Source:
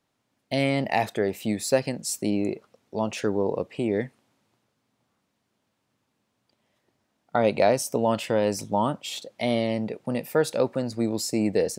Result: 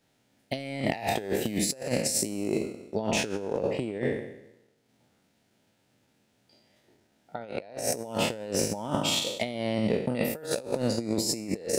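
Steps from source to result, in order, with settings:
peak hold with a decay on every bin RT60 0.95 s
parametric band 1,100 Hz −13 dB 0.3 octaves
transient designer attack −2 dB, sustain −8 dB
compressor whose output falls as the input rises −29 dBFS, ratio −0.5

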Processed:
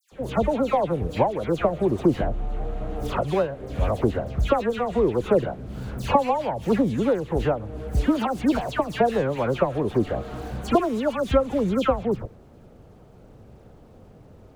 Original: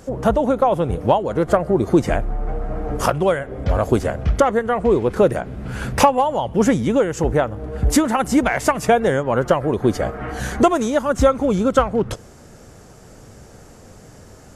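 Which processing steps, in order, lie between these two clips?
running median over 25 samples
all-pass dispersion lows, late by 120 ms, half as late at 2,200 Hz
level −4.5 dB

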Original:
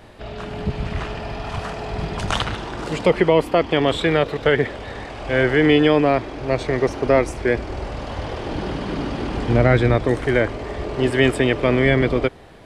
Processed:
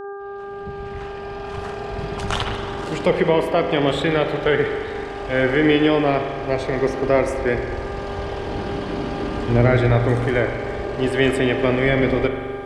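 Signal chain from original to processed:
fade in at the beginning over 2.33 s
hum with harmonics 400 Hz, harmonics 4, −31 dBFS −7 dB per octave
spring reverb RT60 2 s, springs 42 ms, chirp 40 ms, DRR 5.5 dB
level −2 dB

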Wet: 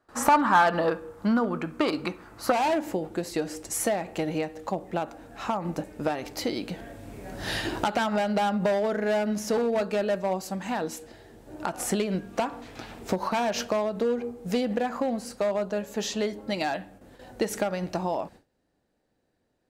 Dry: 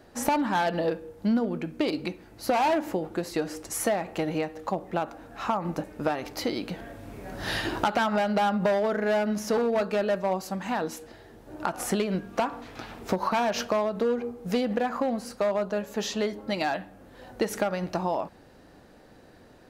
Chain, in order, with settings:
parametric band 1,200 Hz +14 dB 0.81 octaves, from 0:02.52 −3.5 dB
noise gate with hold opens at −41 dBFS
parametric band 7,900 Hz +4.5 dB 0.49 octaves

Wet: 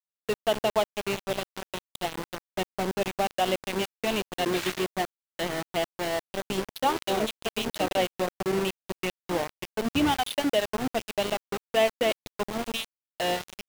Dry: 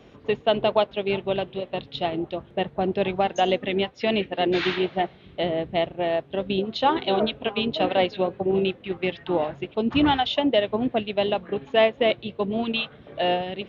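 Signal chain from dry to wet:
centre clipping without the shift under −23 dBFS
level −4 dB

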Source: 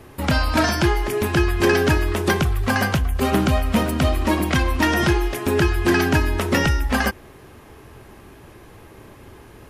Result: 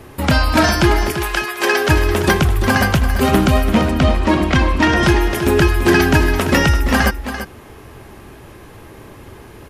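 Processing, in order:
0:01.11–0:01.88: high-pass filter 1,000 Hz → 440 Hz 12 dB per octave
0:03.70–0:05.03: high-frequency loss of the air 73 metres
single-tap delay 339 ms −10 dB
level +5 dB

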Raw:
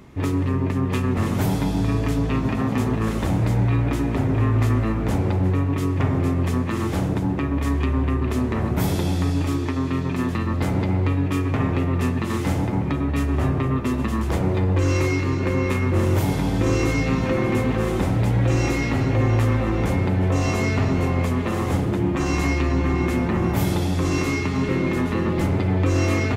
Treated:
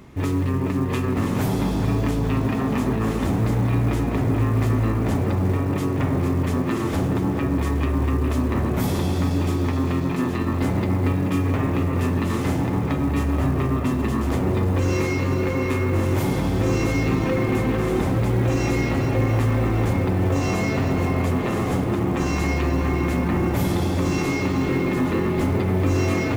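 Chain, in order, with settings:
tape delay 427 ms, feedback 82%, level −4 dB, low-pass 1,500 Hz
in parallel at +1.5 dB: brickwall limiter −17 dBFS, peak gain reduction 10.5 dB
on the sum: floating-point word with a short mantissa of 4 bits
level −6 dB

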